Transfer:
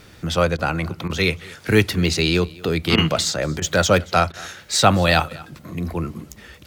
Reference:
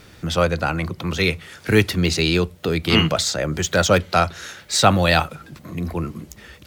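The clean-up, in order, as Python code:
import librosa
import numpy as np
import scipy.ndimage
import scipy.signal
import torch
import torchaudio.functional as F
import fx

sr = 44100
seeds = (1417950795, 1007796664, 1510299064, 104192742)

y = fx.fix_interpolate(x, sr, at_s=(0.57, 1.08, 2.96, 3.6, 4.32), length_ms=15.0)
y = fx.fix_echo_inverse(y, sr, delay_ms=228, level_db=-22.5)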